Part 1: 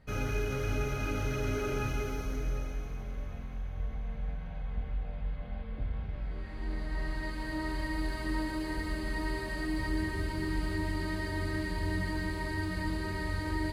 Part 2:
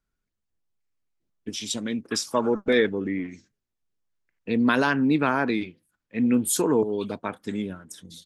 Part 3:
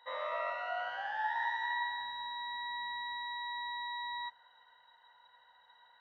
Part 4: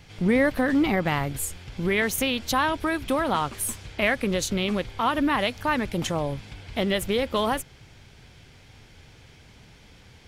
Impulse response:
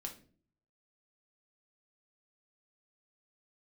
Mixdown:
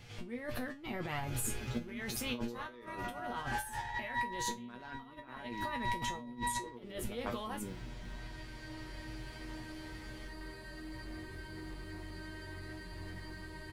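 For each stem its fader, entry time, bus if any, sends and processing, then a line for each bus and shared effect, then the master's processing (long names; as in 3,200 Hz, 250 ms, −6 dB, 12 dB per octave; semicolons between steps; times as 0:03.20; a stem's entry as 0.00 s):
−9.5 dB, 1.15 s, send −3.5 dB, hard clipping −28 dBFS, distortion −18 dB
−3.5 dB, 0.00 s, send −15.5 dB, adaptive Wiener filter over 41 samples; low-pass that shuts in the quiet parts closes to 860 Hz, open at −20 dBFS; bit reduction 11 bits
+3.0 dB, 2.45 s, send −4 dB, high-shelf EQ 2,800 Hz −9 dB; notch filter 670 Hz, Q 13
+0.5 dB, 0.00 s, no send, brickwall limiter −21 dBFS, peak gain reduction 9.5 dB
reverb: on, RT60 0.45 s, pre-delay 3 ms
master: compressor whose output falls as the input rises −31 dBFS, ratio −0.5; tuned comb filter 120 Hz, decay 0.19 s, harmonics all, mix 90%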